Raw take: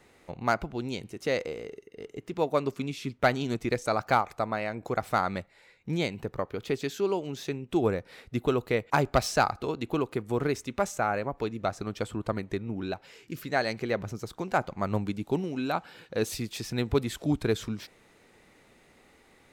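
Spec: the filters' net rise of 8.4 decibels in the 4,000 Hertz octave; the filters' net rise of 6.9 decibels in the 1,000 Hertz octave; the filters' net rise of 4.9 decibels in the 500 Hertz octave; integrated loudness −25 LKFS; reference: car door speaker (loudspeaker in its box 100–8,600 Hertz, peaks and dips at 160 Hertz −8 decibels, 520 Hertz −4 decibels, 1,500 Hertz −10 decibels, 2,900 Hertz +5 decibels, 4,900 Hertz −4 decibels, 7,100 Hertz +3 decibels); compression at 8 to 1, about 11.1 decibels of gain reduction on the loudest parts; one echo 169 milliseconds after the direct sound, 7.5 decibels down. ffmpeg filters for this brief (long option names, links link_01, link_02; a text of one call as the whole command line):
ffmpeg -i in.wav -af "equalizer=frequency=500:width_type=o:gain=6,equalizer=frequency=1000:width_type=o:gain=8.5,equalizer=frequency=4000:width_type=o:gain=9,acompressor=threshold=-22dB:ratio=8,highpass=100,equalizer=frequency=160:width_type=q:width=4:gain=-8,equalizer=frequency=520:width_type=q:width=4:gain=-4,equalizer=frequency=1500:width_type=q:width=4:gain=-10,equalizer=frequency=2900:width_type=q:width=4:gain=5,equalizer=frequency=4900:width_type=q:width=4:gain=-4,equalizer=frequency=7100:width_type=q:width=4:gain=3,lowpass=frequency=8600:width=0.5412,lowpass=frequency=8600:width=1.3066,aecho=1:1:169:0.422,volume=5.5dB" out.wav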